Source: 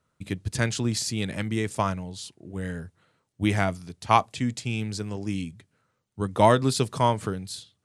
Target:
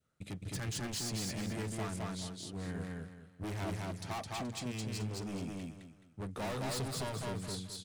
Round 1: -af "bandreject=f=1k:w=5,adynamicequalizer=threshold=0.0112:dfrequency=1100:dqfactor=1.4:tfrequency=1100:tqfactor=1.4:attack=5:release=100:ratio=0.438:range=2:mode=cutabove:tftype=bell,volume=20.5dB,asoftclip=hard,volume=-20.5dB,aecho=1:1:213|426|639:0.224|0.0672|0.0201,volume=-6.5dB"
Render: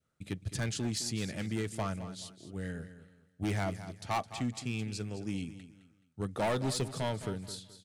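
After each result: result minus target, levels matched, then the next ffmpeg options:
echo-to-direct -11.5 dB; overloaded stage: distortion -6 dB
-af "bandreject=f=1k:w=5,adynamicequalizer=threshold=0.0112:dfrequency=1100:dqfactor=1.4:tfrequency=1100:tqfactor=1.4:attack=5:release=100:ratio=0.438:range=2:mode=cutabove:tftype=bell,volume=20.5dB,asoftclip=hard,volume=-20.5dB,aecho=1:1:213|426|639|852:0.841|0.252|0.0757|0.0227,volume=-6.5dB"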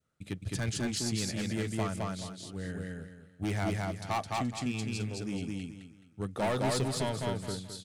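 overloaded stage: distortion -6 dB
-af "bandreject=f=1k:w=5,adynamicequalizer=threshold=0.0112:dfrequency=1100:dqfactor=1.4:tfrequency=1100:tqfactor=1.4:attack=5:release=100:ratio=0.438:range=2:mode=cutabove:tftype=bell,volume=31dB,asoftclip=hard,volume=-31dB,aecho=1:1:213|426|639|852:0.841|0.252|0.0757|0.0227,volume=-6.5dB"

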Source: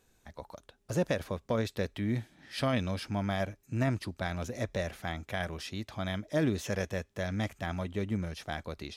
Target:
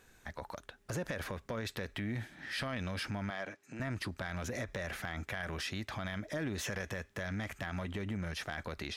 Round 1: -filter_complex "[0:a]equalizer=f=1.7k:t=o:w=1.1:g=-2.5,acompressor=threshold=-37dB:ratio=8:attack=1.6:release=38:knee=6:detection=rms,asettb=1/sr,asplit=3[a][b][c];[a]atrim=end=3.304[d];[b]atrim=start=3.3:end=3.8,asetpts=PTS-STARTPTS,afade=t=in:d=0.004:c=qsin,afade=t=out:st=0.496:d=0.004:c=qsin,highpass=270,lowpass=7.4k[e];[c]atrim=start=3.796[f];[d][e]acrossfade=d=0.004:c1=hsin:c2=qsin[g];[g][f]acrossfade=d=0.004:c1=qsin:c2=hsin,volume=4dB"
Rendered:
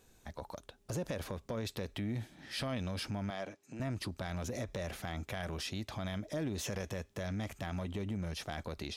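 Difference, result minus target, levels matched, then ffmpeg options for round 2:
2000 Hz band -6.0 dB
-filter_complex "[0:a]equalizer=f=1.7k:t=o:w=1.1:g=8,acompressor=threshold=-37dB:ratio=8:attack=1.6:release=38:knee=6:detection=rms,asettb=1/sr,asplit=3[a][b][c];[a]atrim=end=3.304[d];[b]atrim=start=3.3:end=3.8,asetpts=PTS-STARTPTS,afade=t=in:d=0.004:c=qsin,afade=t=out:st=0.496:d=0.004:c=qsin,highpass=270,lowpass=7.4k[e];[c]atrim=start=3.796[f];[d][e]acrossfade=d=0.004:c1=hsin:c2=qsin[g];[g][f]acrossfade=d=0.004:c1=qsin:c2=hsin,volume=4dB"

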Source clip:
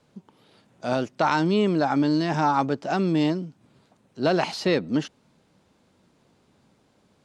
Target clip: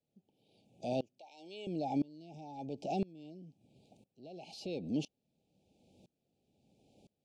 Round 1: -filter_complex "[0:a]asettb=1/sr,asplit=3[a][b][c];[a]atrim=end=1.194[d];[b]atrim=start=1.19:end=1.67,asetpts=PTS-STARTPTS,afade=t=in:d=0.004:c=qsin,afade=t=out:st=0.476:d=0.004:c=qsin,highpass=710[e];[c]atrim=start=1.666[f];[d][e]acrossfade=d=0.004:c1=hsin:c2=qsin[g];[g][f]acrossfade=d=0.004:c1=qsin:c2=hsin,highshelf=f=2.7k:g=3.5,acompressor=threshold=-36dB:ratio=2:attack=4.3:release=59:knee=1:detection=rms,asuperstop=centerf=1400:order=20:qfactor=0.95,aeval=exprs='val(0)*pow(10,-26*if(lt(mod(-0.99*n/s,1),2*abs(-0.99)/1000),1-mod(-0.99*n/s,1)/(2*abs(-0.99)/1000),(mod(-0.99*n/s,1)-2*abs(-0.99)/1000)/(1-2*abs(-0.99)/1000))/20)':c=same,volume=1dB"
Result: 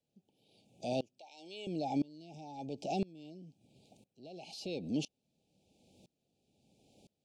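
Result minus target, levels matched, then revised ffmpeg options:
4000 Hz band +3.5 dB
-filter_complex "[0:a]asettb=1/sr,asplit=3[a][b][c];[a]atrim=end=1.194[d];[b]atrim=start=1.19:end=1.67,asetpts=PTS-STARTPTS,afade=t=in:d=0.004:c=qsin,afade=t=out:st=0.476:d=0.004:c=qsin,highpass=710[e];[c]atrim=start=1.666[f];[d][e]acrossfade=d=0.004:c1=hsin:c2=qsin[g];[g][f]acrossfade=d=0.004:c1=qsin:c2=hsin,highshelf=f=2.7k:g=-3.5,acompressor=threshold=-36dB:ratio=2:attack=4.3:release=59:knee=1:detection=rms,asuperstop=centerf=1400:order=20:qfactor=0.95,aeval=exprs='val(0)*pow(10,-26*if(lt(mod(-0.99*n/s,1),2*abs(-0.99)/1000),1-mod(-0.99*n/s,1)/(2*abs(-0.99)/1000),(mod(-0.99*n/s,1)-2*abs(-0.99)/1000)/(1-2*abs(-0.99)/1000))/20)':c=same,volume=1dB"

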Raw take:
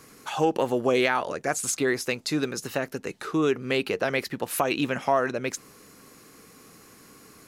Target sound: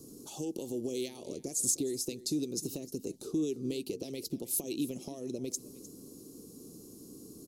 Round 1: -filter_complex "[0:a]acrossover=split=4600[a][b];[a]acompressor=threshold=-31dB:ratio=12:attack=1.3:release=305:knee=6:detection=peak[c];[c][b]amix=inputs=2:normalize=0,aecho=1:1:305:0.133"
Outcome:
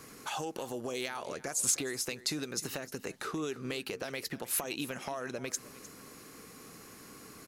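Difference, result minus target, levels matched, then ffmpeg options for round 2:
250 Hz band -5.5 dB
-filter_complex "[0:a]acrossover=split=4600[a][b];[a]acompressor=threshold=-31dB:ratio=12:attack=1.3:release=305:knee=6:detection=peak,lowpass=f=340:t=q:w=2[c];[c][b]amix=inputs=2:normalize=0,aecho=1:1:305:0.133"

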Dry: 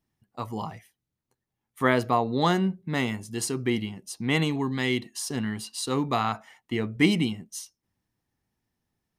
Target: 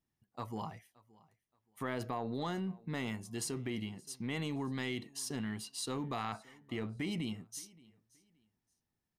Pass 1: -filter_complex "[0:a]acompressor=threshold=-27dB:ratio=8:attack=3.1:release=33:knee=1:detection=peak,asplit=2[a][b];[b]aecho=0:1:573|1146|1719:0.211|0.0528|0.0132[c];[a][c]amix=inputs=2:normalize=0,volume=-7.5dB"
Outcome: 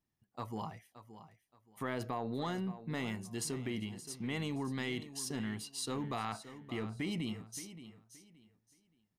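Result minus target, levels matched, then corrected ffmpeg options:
echo-to-direct +10.5 dB
-filter_complex "[0:a]acompressor=threshold=-27dB:ratio=8:attack=3.1:release=33:knee=1:detection=peak,asplit=2[a][b];[b]aecho=0:1:573|1146:0.0631|0.0158[c];[a][c]amix=inputs=2:normalize=0,volume=-7.5dB"

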